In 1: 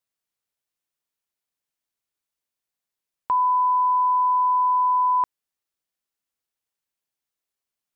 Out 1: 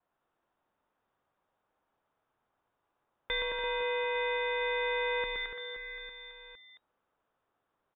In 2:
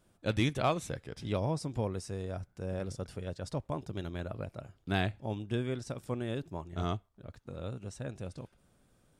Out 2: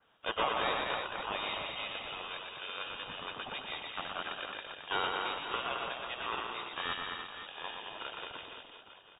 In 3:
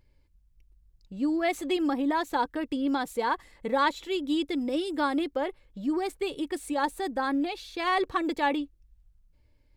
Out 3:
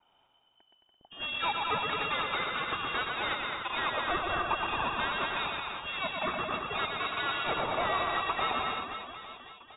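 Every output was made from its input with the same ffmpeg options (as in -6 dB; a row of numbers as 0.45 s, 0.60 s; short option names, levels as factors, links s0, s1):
-filter_complex "[0:a]tiltshelf=f=730:g=-8,aeval=exprs='val(0)*sin(2*PI*770*n/s)':c=same,acompressor=threshold=0.0355:ratio=3,asplit=2[s0][s1];[s1]aecho=0:1:218:0.422[s2];[s0][s2]amix=inputs=2:normalize=0,asoftclip=type=hard:threshold=0.0299,aexciter=amount=6.6:drive=3.7:freq=2500,asplit=2[s3][s4];[s4]aecho=0:1:120|288|523.2|852.5|1313:0.631|0.398|0.251|0.158|0.1[s5];[s3][s5]amix=inputs=2:normalize=0,adynamicequalizer=threshold=0.00355:dfrequency=360:dqfactor=0.7:tfrequency=360:tqfactor=0.7:attack=5:release=100:ratio=0.375:range=3.5:mode=cutabove:tftype=bell,lowpass=f=3200:t=q:w=0.5098,lowpass=f=3200:t=q:w=0.6013,lowpass=f=3200:t=q:w=0.9,lowpass=f=3200:t=q:w=2.563,afreqshift=-3800"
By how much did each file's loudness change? 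-12.5 LU, -0.5 LU, -2.5 LU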